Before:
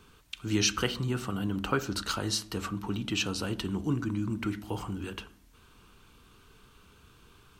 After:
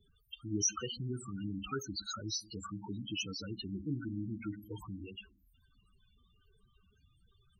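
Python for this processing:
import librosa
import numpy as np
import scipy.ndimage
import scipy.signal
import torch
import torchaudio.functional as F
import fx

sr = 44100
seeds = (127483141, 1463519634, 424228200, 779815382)

y = librosa.effects.preemphasis(x, coef=0.8, zi=[0.0])
y = fx.spec_topn(y, sr, count=8)
y = y * 10.0 ** (6.5 / 20.0)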